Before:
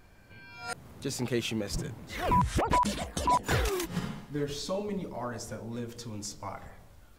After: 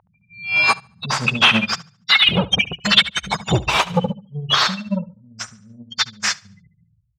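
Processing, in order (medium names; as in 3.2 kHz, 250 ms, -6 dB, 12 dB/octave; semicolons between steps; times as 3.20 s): inverse Chebyshev band-stop 320–1500 Hz, stop band 40 dB; spectral gate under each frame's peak -15 dB strong; 1.73–2.29 s: RIAA curve recording; overdrive pedal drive 35 dB, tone 1.7 kHz, clips at -12.5 dBFS; LFO band-pass saw up 0.31 Hz 870–1800 Hz; feedback delay 71 ms, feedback 38%, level -9.5 dB; loudness maximiser +34 dB; upward expansion 2.5:1, over -23 dBFS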